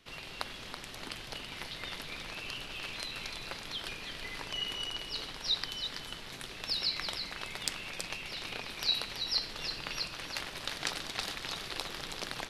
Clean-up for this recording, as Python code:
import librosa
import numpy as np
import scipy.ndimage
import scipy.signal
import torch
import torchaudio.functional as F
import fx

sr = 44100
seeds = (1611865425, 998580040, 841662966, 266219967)

y = fx.fix_declip(x, sr, threshold_db=-10.5)
y = fx.fix_echo_inverse(y, sr, delay_ms=328, level_db=-7.5)